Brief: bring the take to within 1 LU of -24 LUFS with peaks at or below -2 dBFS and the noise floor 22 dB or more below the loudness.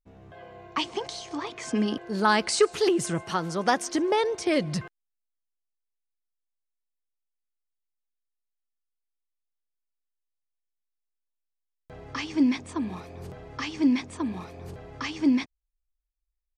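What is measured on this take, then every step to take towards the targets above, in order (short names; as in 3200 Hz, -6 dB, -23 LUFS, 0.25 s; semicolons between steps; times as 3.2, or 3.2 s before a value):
loudness -27.0 LUFS; peak -7.5 dBFS; loudness target -24.0 LUFS
-> gain +3 dB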